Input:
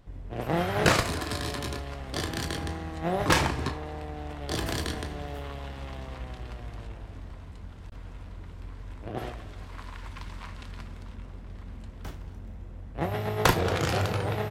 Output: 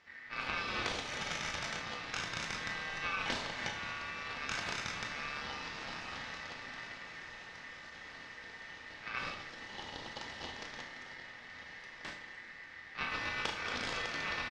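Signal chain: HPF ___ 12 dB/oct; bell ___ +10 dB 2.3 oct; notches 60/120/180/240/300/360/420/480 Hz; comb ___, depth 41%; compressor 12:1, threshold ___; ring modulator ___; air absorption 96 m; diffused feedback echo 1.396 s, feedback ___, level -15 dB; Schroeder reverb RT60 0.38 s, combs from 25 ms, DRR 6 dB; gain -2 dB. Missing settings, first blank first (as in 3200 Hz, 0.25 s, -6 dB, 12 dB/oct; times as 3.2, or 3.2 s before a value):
90 Hz, 3400 Hz, 2.8 ms, -28 dBFS, 1900 Hz, 68%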